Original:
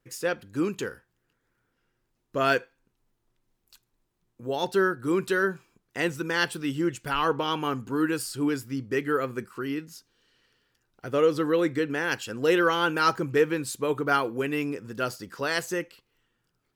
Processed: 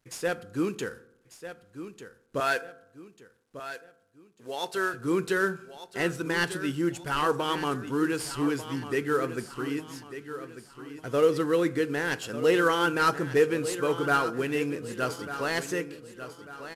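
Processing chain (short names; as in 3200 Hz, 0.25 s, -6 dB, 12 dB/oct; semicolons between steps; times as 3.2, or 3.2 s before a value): CVSD 64 kbps; 2.4–4.94 HPF 740 Hz 6 dB/oct; feedback echo 1.195 s, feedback 39%, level -12 dB; reverb RT60 0.80 s, pre-delay 3 ms, DRR 15.5 dB; gain -1 dB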